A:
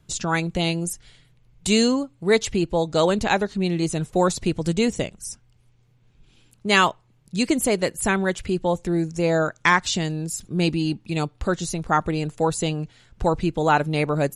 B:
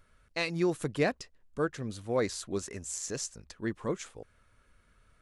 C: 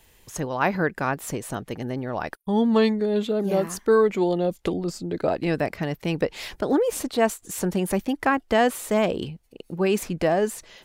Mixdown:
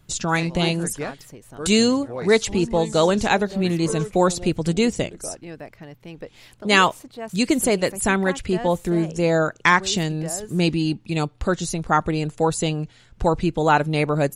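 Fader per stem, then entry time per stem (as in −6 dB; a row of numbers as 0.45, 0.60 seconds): +1.5, −2.5, −13.0 decibels; 0.00, 0.00, 0.00 seconds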